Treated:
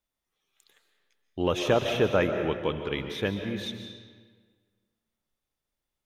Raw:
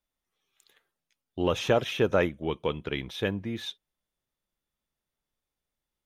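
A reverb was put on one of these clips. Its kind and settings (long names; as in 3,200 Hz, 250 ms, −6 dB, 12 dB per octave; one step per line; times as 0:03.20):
comb and all-pass reverb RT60 1.6 s, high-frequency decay 0.75×, pre-delay 100 ms, DRR 6 dB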